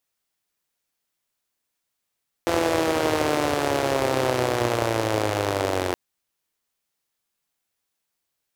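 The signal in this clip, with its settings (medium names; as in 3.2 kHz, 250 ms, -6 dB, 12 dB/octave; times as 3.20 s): four-cylinder engine model, changing speed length 3.47 s, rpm 5100, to 2700, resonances 110/350/510 Hz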